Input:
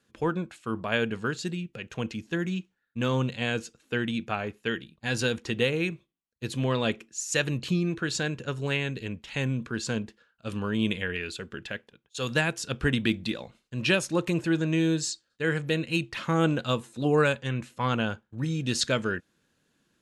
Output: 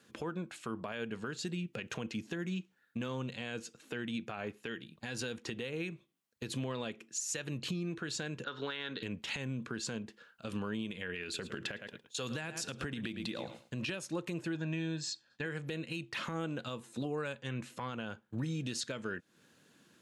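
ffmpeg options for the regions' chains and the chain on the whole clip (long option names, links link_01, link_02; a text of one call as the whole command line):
ffmpeg -i in.wav -filter_complex "[0:a]asettb=1/sr,asplit=3[link_01][link_02][link_03];[link_01]atrim=end=8.444[link_04];[link_02]atrim=start=8.44:end=9.03,asetpts=PTS-STARTPTS,afade=type=in:duration=0.004:curve=qsin,afade=type=out:start_time=0.586:duration=0.004:curve=qsin,highpass=350,equalizer=frequency=380:width_type=q:width=4:gain=-5,equalizer=frequency=640:width_type=q:width=4:gain=-8,equalizer=frequency=1400:width_type=q:width=4:gain=7,equalizer=frequency=2500:width_type=q:width=4:gain=-9,equalizer=frequency=3600:width_type=q:width=4:gain=10,lowpass=frequency=4200:width=0.5412,lowpass=frequency=4200:width=1.3066,acompressor=threshold=-32dB:ratio=6:attack=3.2:release=140:knee=1:detection=peak[link_05];[link_03]atrim=start=9.026[link_06];[link_04][link_05]acrossfade=duration=0.004:curve1=hsin:curve2=qsin[link_07];[link_07][link_06]acrossfade=duration=0.004:curve1=qsin:curve2=hsin,asettb=1/sr,asplit=3[link_08][link_09][link_10];[link_08]atrim=end=11.234[link_11];[link_09]atrim=start=11.23:end=13.89,asetpts=PTS-STARTPTS,afade=type=in:duration=0.004:curve=qsin,afade=type=out:start_time=2.656:duration=0.004:curve=qsin,aecho=1:1:108|216:0.15|0.0269,atrim=end_sample=117306,acompressor=threshold=-34dB:ratio=2.5:attack=3.2:release=140:knee=1:detection=peak[link_12];[link_10]atrim=start=13.886[link_13];[link_11][link_12]acrossfade=duration=0.004:curve1=hsin:curve2=qsin[link_14];[link_14][link_13]acrossfade=duration=0.004:curve1=qsin:curve2=hsin,asettb=1/sr,asplit=3[link_15][link_16][link_17];[link_15]atrim=end=14.554[link_18];[link_16]atrim=start=14.55:end=15.46,asetpts=PTS-STARTPTS,afade=type=in:duration=0.004:curve=qsin,afade=type=out:start_time=0.906:duration=0.004:curve=qsin,lowpass=5300,aecho=1:1:1.2:0.47,atrim=end_sample=40131[link_19];[link_17]atrim=start=15.456[link_20];[link_18][link_19]acrossfade=duration=0.004:curve1=hsin:curve2=qsin[link_21];[link_21][link_20]acrossfade=duration=0.004:curve1=qsin:curve2=hsin,highpass=120,acompressor=threshold=-40dB:ratio=10,alimiter=level_in=9.5dB:limit=-24dB:level=0:latency=1:release=71,volume=-9.5dB,volume=6.5dB" out.wav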